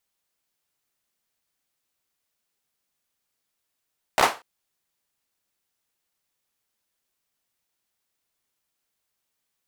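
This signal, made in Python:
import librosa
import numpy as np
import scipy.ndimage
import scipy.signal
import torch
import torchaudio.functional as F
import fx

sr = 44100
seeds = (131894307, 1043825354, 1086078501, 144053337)

y = fx.drum_clap(sr, seeds[0], length_s=0.24, bursts=4, spacing_ms=15, hz=840.0, decay_s=0.27)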